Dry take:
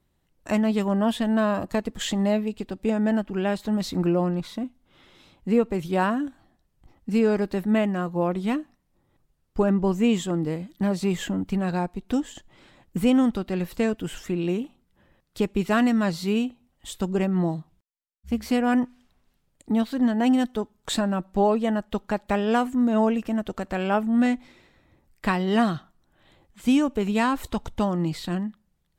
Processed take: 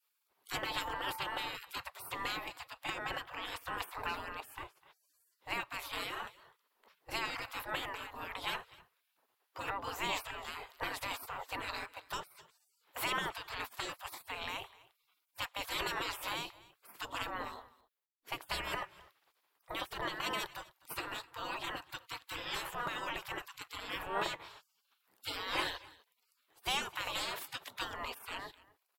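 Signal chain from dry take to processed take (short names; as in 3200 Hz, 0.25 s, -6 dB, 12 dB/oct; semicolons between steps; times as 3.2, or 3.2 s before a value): bell 8600 Hz -9 dB 0.21 oct; on a send: echo 0.253 s -21.5 dB; on the sum: spectral gate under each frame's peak -30 dB weak; fifteen-band EQ 400 Hz +3 dB, 1000 Hz +6 dB, 6300 Hz -8 dB; 0.66–1.48 whine 890 Hz -49 dBFS; gain +6 dB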